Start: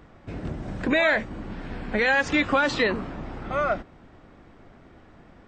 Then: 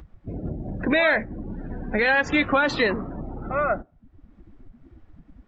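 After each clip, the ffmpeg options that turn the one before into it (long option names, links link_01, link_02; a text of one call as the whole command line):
ffmpeg -i in.wav -filter_complex "[0:a]afftdn=noise_reduction=27:noise_floor=-36,asplit=2[link_01][link_02];[link_02]acompressor=mode=upward:threshold=-27dB:ratio=2.5,volume=0.5dB[link_03];[link_01][link_03]amix=inputs=2:normalize=0,volume=-5dB" out.wav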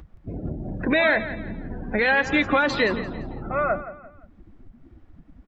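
ffmpeg -i in.wav -af "aecho=1:1:172|344|516:0.211|0.074|0.0259" out.wav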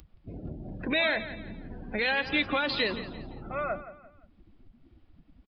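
ffmpeg -i in.wav -af "aresample=11025,aresample=44100,aexciter=amount=4.3:drive=1.3:freq=2500,volume=-8.5dB" out.wav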